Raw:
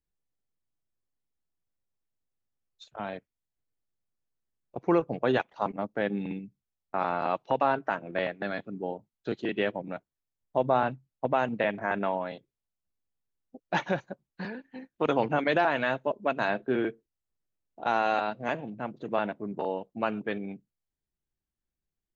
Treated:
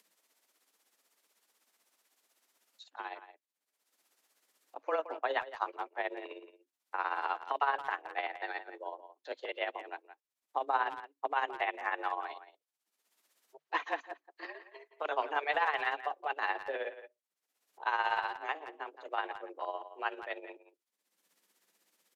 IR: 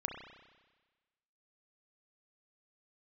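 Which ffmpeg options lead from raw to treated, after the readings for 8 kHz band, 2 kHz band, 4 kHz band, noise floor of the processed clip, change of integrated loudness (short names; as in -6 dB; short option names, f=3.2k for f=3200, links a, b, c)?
n/a, -2.5 dB, -3.0 dB, under -85 dBFS, -6.0 dB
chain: -filter_complex "[0:a]acrossover=split=3100[a][b];[b]acompressor=threshold=-52dB:ratio=4:attack=1:release=60[c];[a][c]amix=inputs=2:normalize=0,highpass=f=760:p=1,acompressor=mode=upward:threshold=-49dB:ratio=2.5,tremolo=f=16:d=0.6,afreqshift=150,asplit=2[d][e];[e]adelay=170,highpass=300,lowpass=3.4k,asoftclip=type=hard:threshold=-24dB,volume=-12dB[f];[d][f]amix=inputs=2:normalize=0,aresample=32000,aresample=44100"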